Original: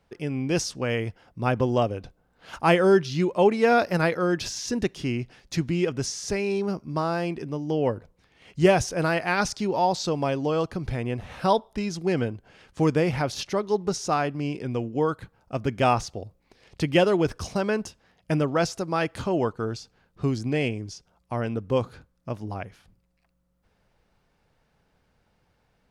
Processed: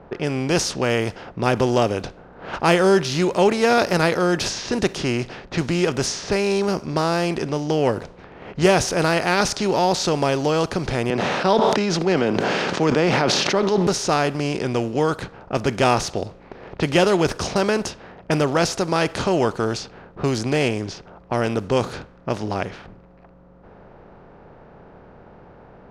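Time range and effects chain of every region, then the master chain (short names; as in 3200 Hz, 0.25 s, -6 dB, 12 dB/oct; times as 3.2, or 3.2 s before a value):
11.1–13.87 HPF 170 Hz 24 dB/oct + air absorption 170 m + sustainer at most 21 dB/s
whole clip: per-bin compression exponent 0.6; low-pass opened by the level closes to 1000 Hz, open at -18 dBFS; high shelf 4300 Hz +6 dB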